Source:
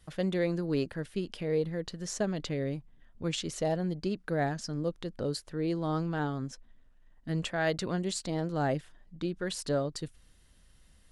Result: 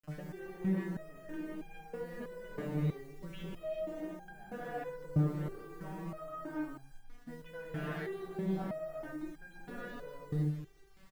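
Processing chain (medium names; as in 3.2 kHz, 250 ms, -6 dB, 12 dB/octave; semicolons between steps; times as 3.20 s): expander -55 dBFS; low-pass 2.1 kHz 24 dB/octave; in parallel at +1 dB: peak limiter -26 dBFS, peak gain reduction 8 dB; on the sum: compression 12:1, threshold -29 dBFS, peak gain reduction 9.5 dB; gated-style reverb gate 450 ms rising, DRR -6 dB; saturation -24.5 dBFS, distortion -13 dB; bit crusher 9-bit; on a send: feedback delay 186 ms, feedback 41%, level -14 dB; on the sum: resonator arpeggio 3.1 Hz 150–800 Hz; trim +4.5 dB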